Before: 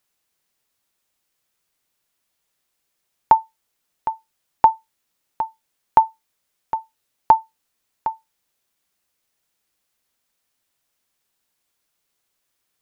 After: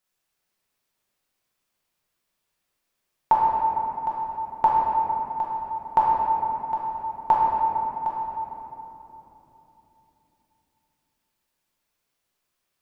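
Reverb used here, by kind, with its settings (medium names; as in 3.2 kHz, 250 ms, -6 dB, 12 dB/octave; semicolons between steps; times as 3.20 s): simulated room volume 210 m³, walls hard, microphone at 0.98 m; trim -8 dB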